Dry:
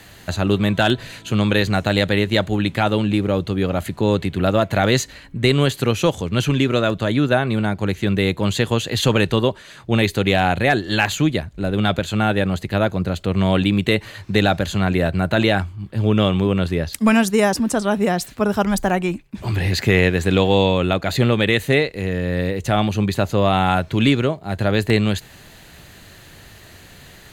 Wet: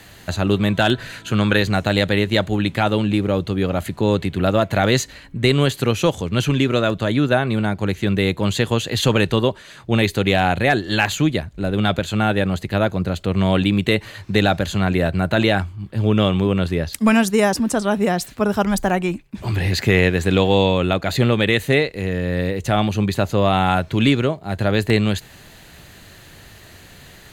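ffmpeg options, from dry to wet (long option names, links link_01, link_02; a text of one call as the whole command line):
ffmpeg -i in.wav -filter_complex "[0:a]asettb=1/sr,asplit=3[link_01][link_02][link_03];[link_01]atrim=end=0.934[link_04];[link_02]atrim=start=0.93:end=1.57,asetpts=PTS-STARTPTS,afade=type=in:duration=0.004:curve=qsin,afade=type=out:start_time=0.636:duration=0.004:curve=qsin,equalizer=frequency=1500:width_type=o:width=0.49:gain=8[link_05];[link_03]atrim=start=1.566[link_06];[link_04][link_05]acrossfade=duration=0.004:curve1=hsin:curve2=qsin[link_07];[link_07][link_06]acrossfade=duration=0.004:curve1=qsin:curve2=hsin" out.wav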